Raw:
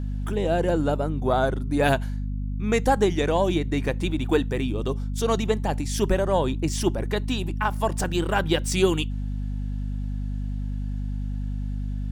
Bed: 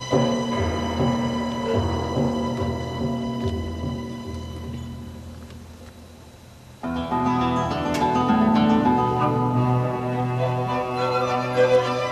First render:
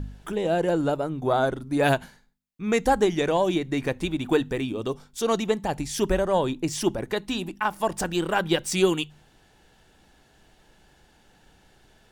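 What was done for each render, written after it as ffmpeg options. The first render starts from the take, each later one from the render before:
-af "bandreject=f=50:t=h:w=4,bandreject=f=100:t=h:w=4,bandreject=f=150:t=h:w=4,bandreject=f=200:t=h:w=4,bandreject=f=250:t=h:w=4"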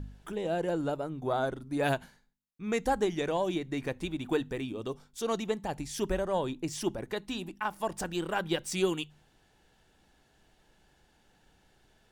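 -af "volume=-7.5dB"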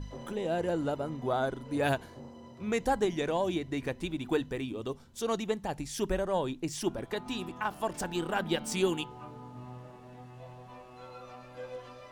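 -filter_complex "[1:a]volume=-25dB[a];[0:a][a]amix=inputs=2:normalize=0"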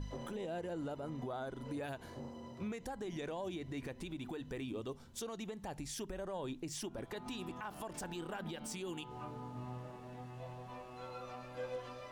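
-af "acompressor=threshold=-30dB:ratio=6,alimiter=level_in=9.5dB:limit=-24dB:level=0:latency=1:release=143,volume=-9.5dB"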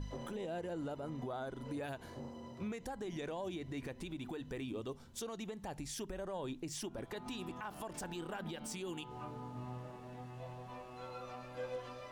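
-af anull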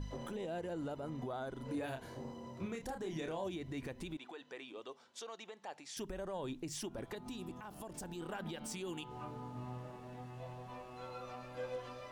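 -filter_complex "[0:a]asettb=1/sr,asplit=3[a][b][c];[a]atrim=end=1.654[d];[b]atrim=start=1.65:end=3.47,asetpts=PTS-STARTPTS,afade=t=in:d=0.004:c=qsin,afade=t=out:st=1.816:d=0.004:c=qsin,asplit=2[e][f];[f]adelay=31,volume=-5.5dB[g];[e][g]amix=inputs=2:normalize=0,atrim=end_sample=80262[h];[c]atrim=start=3.466[i];[d][h]acrossfade=d=0.004:c1=hsin:c2=qsin[j];[j][i]acrossfade=d=0.004:c1=qsin:c2=hsin,asettb=1/sr,asplit=3[k][l][m];[k]atrim=end=4.174[n];[l]atrim=start=4.17:end=5.97,asetpts=PTS-STARTPTS,afade=t=in:d=0.004:c=qsin,afade=t=out:st=1.796:d=0.004:c=qsin,highpass=550,lowpass=5.9k[o];[m]atrim=start=5.966[p];[n][o]acrossfade=d=0.004:c1=hsin:c2=qsin[q];[q][p]acrossfade=d=0.004:c1=qsin:c2=hsin,asettb=1/sr,asplit=3[r][s][t];[r]atrim=end=7.154[u];[s]atrim=start=7.15:end=8.21,asetpts=PTS-STARTPTS,afade=t=in:d=0.004:c=qsin,afade=t=out:st=1.056:d=0.004:c=qsin,equalizer=f=1.7k:w=0.42:g=-7.5[v];[t]atrim=start=8.206[w];[u][v]acrossfade=d=0.004:c1=hsin:c2=qsin[x];[x][w]acrossfade=d=0.004:c1=qsin:c2=hsin"

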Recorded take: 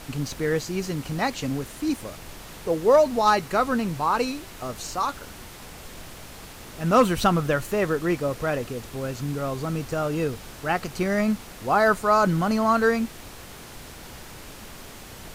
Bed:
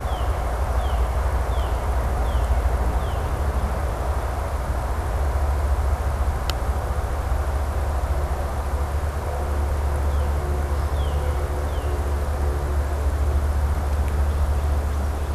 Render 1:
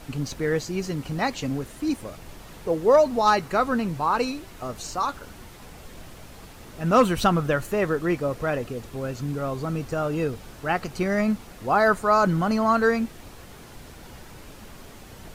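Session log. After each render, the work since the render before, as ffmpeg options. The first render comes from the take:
-af "afftdn=nr=6:nf=-43"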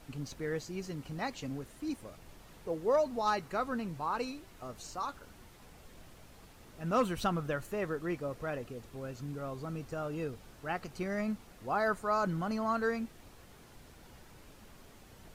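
-af "volume=-11.5dB"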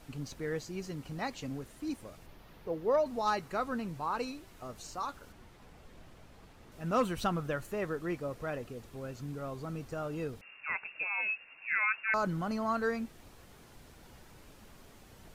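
-filter_complex "[0:a]asettb=1/sr,asplit=3[a][b][c];[a]atrim=end=2.264[d];[b]atrim=start=2.26:end=3.06,asetpts=PTS-STARTPTS,afade=t=in:d=0.004:c=qsin,afade=t=out:st=0.796:d=0.004:c=qsin,equalizer=f=8k:t=o:w=0.86:g=-12[e];[c]atrim=start=3.056[f];[d][e]acrossfade=d=0.004:c1=hsin:c2=qsin[g];[g][f]acrossfade=d=0.004:c1=qsin:c2=hsin,asettb=1/sr,asplit=3[h][i][j];[h]atrim=end=5.324[k];[i]atrim=start=5.32:end=6.72,asetpts=PTS-STARTPTS,afade=t=in:d=0.004:c=qsin,afade=t=out:st=1.396:d=0.004:c=qsin,aemphasis=mode=reproduction:type=cd[l];[j]atrim=start=6.716[m];[k][l]acrossfade=d=0.004:c1=hsin:c2=qsin[n];[n][m]acrossfade=d=0.004:c1=qsin:c2=hsin,asettb=1/sr,asplit=3[o][p][q];[o]atrim=end=10.414[r];[p]atrim=start=10.41:end=12.14,asetpts=PTS-STARTPTS,afade=t=in:d=0.004:c=qsin,afade=t=out:st=1.726:d=0.004:c=qsin,lowpass=f=2.4k:t=q:w=0.5098,lowpass=f=2.4k:t=q:w=0.6013,lowpass=f=2.4k:t=q:w=0.9,lowpass=f=2.4k:t=q:w=2.563,afreqshift=-2800[s];[q]atrim=start=12.136[t];[r][s]acrossfade=d=0.004:c1=hsin:c2=qsin[u];[u][t]acrossfade=d=0.004:c1=qsin:c2=hsin"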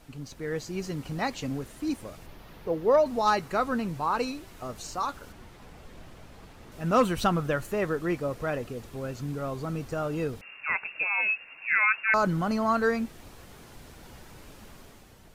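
-af "dynaudnorm=f=160:g=7:m=7dB"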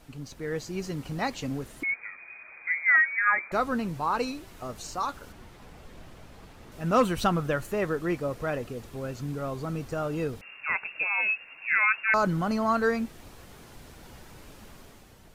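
-filter_complex "[0:a]asettb=1/sr,asplit=3[a][b][c];[a]atrim=end=1.834[d];[b]atrim=start=1.83:end=3.52,asetpts=PTS-STARTPTS,afade=t=in:d=0.004:c=qsin,afade=t=out:st=1.686:d=0.004:c=qsin,lowpass=f=2.1k:t=q:w=0.5098,lowpass=f=2.1k:t=q:w=0.6013,lowpass=f=2.1k:t=q:w=0.9,lowpass=f=2.1k:t=q:w=2.563,afreqshift=-2500[e];[c]atrim=start=3.516[f];[d][e]acrossfade=d=0.004:c1=hsin:c2=qsin[g];[g][f]acrossfade=d=0.004:c1=qsin:c2=hsin"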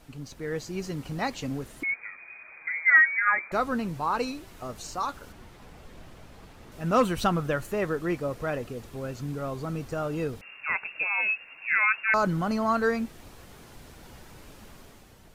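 -filter_complex "[0:a]asettb=1/sr,asplit=3[a][b][c];[a]atrim=end=2.614[d];[b]atrim=start=2.61:end=3.29,asetpts=PTS-STARTPTS,afade=t=in:d=0.004:c=qsin,afade=t=out:st=0.676:d=0.004:c=qsin,aecho=1:1:6.3:0.65,atrim=end_sample=29988[e];[c]atrim=start=3.286[f];[d][e]acrossfade=d=0.004:c1=hsin:c2=qsin[g];[g][f]acrossfade=d=0.004:c1=qsin:c2=hsin"

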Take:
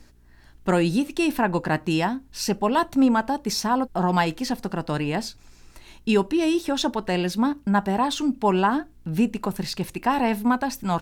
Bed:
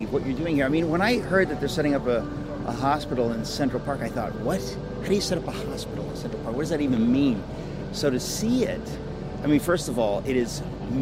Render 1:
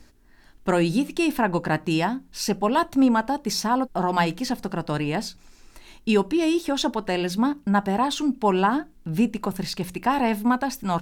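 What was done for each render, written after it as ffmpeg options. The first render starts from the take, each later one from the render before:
-af "bandreject=f=60:t=h:w=4,bandreject=f=120:t=h:w=4,bandreject=f=180:t=h:w=4"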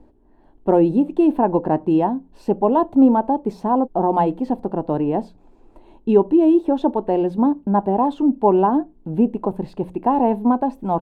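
-af "firequalizer=gain_entry='entry(160,0);entry(310,8);entry(900,5);entry(1300,-10);entry(2000,-16);entry(3100,-14);entry(5500,-29);entry(8400,-22);entry(14000,-26)':delay=0.05:min_phase=1"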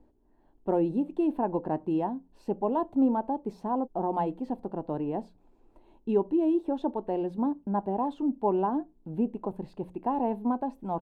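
-af "volume=-11dB"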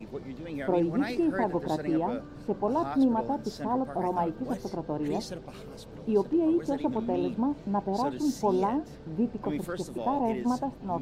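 -filter_complex "[1:a]volume=-13dB[a];[0:a][a]amix=inputs=2:normalize=0"

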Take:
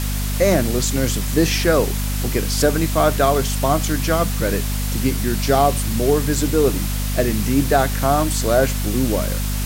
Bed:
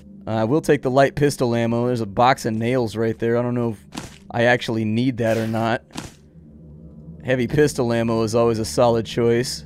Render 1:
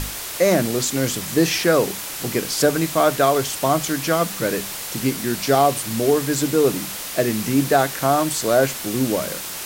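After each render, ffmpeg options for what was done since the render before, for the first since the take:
-af "bandreject=f=50:t=h:w=6,bandreject=f=100:t=h:w=6,bandreject=f=150:t=h:w=6,bandreject=f=200:t=h:w=6,bandreject=f=250:t=h:w=6"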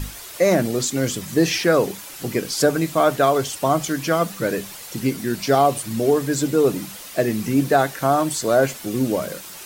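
-af "afftdn=nr=9:nf=-31"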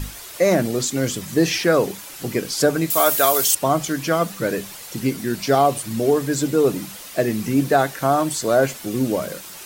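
-filter_complex "[0:a]asettb=1/sr,asplit=3[a][b][c];[a]atrim=end=2.904[d];[b]atrim=start=2.9:end=3.55,asetpts=PTS-STARTPTS,afade=t=in:d=0.004:c=qsin,afade=t=out:st=0.646:d=0.004:c=qsin,aemphasis=mode=production:type=riaa[e];[c]atrim=start=3.546[f];[d][e]acrossfade=d=0.004:c1=hsin:c2=qsin[g];[g][f]acrossfade=d=0.004:c1=qsin:c2=hsin"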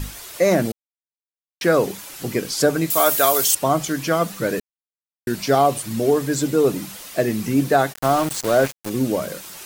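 -filter_complex "[0:a]asplit=3[a][b][c];[a]afade=t=out:st=7.92:d=0.02[d];[b]aeval=exprs='val(0)*gte(abs(val(0)),0.0631)':c=same,afade=t=in:st=7.92:d=0.02,afade=t=out:st=8.89:d=0.02[e];[c]afade=t=in:st=8.89:d=0.02[f];[d][e][f]amix=inputs=3:normalize=0,asplit=5[g][h][i][j][k];[g]atrim=end=0.72,asetpts=PTS-STARTPTS,afade=t=out:st=0.716:d=0.004:c=hsin[l];[h]atrim=start=0.72:end=1.61,asetpts=PTS-STARTPTS,volume=0[m];[i]atrim=start=1.61:end=4.6,asetpts=PTS-STARTPTS,afade=t=in:d=0.004:c=hsin,afade=t=out:st=2.986:d=0.004:c=hsin[n];[j]atrim=start=4.6:end=5.27,asetpts=PTS-STARTPTS,volume=0[o];[k]atrim=start=5.27,asetpts=PTS-STARTPTS,afade=t=in:d=0.004:c=hsin[p];[l][m][n][o][p]concat=n=5:v=0:a=1"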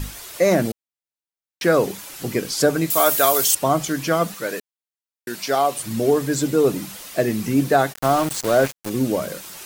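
-filter_complex "[0:a]asettb=1/sr,asplit=3[a][b][c];[a]atrim=end=4.344[d];[b]atrim=start=4.34:end=5.8,asetpts=PTS-STARTPTS,afade=t=in:d=0.004:c=qsin,afade=t=out:st=1.456:d=0.004:c=qsin,highpass=f=650:p=1[e];[c]atrim=start=5.796[f];[d][e]acrossfade=d=0.004:c1=hsin:c2=qsin[g];[g][f]acrossfade=d=0.004:c1=qsin:c2=hsin"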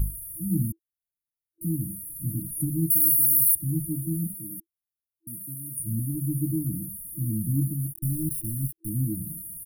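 -af "afftfilt=real='re*(1-between(b*sr/4096,330,9300))':imag='im*(1-between(b*sr/4096,330,9300))':win_size=4096:overlap=0.75,aecho=1:1:1.9:0.83"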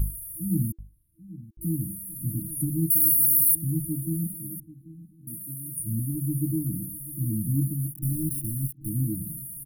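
-filter_complex "[0:a]asplit=2[a][b];[b]adelay=786,lowpass=f=1k:p=1,volume=-16.5dB,asplit=2[c][d];[d]adelay=786,lowpass=f=1k:p=1,volume=0.44,asplit=2[e][f];[f]adelay=786,lowpass=f=1k:p=1,volume=0.44,asplit=2[g][h];[h]adelay=786,lowpass=f=1k:p=1,volume=0.44[i];[a][c][e][g][i]amix=inputs=5:normalize=0"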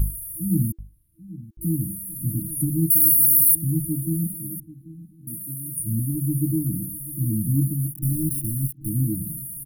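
-af "volume=4dB"

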